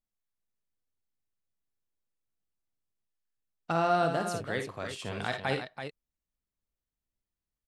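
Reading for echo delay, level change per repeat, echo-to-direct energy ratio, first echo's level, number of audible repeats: 50 ms, no steady repeat, -4.0 dB, -9.0 dB, 2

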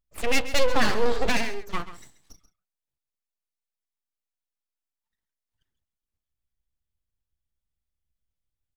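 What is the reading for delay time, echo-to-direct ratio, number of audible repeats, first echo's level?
0.134 s, -14.0 dB, 1, -14.0 dB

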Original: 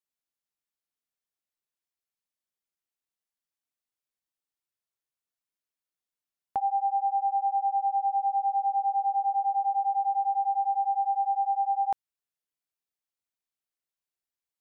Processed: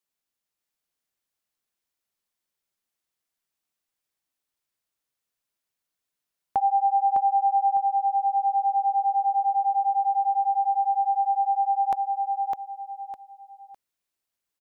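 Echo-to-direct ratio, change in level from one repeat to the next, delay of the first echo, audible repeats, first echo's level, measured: -3.0 dB, -10.5 dB, 0.606 s, 3, -3.5 dB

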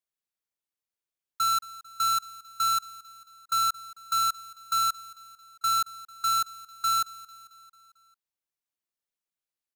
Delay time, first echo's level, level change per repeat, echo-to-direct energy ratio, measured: 0.223 s, -19.0 dB, -4.5 dB, -17.0 dB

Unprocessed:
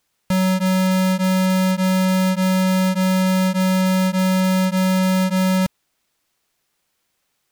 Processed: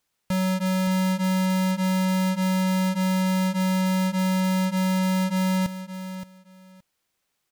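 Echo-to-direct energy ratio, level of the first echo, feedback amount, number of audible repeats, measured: -11.5 dB, -11.5 dB, 18%, 2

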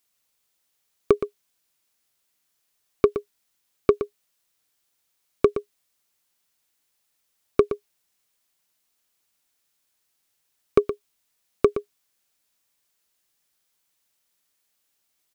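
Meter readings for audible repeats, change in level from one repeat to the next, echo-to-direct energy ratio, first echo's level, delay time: 1, no steady repeat, -11.0 dB, -11.0 dB, 0.119 s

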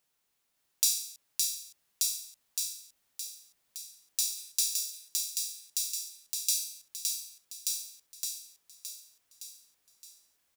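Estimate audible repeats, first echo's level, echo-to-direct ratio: 8, -3.5 dB, 0.5 dB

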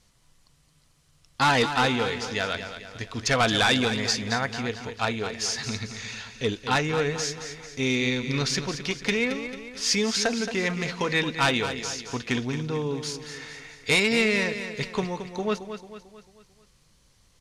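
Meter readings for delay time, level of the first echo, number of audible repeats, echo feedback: 0.222 s, -10.0 dB, 4, 48%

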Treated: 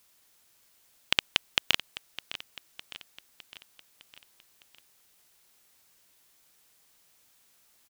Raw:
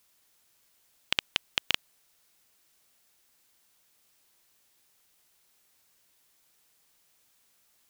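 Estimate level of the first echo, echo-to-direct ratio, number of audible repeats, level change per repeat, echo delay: -15.0 dB, -13.5 dB, 4, -5.0 dB, 0.608 s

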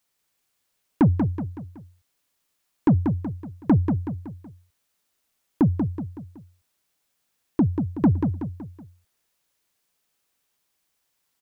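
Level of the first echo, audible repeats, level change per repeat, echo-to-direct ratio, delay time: -6.0 dB, 4, -7.0 dB, -5.0 dB, 0.187 s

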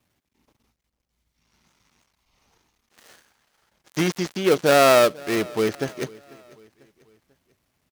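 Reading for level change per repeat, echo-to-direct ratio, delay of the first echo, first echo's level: -7.0 dB, -22.0 dB, 0.494 s, -23.0 dB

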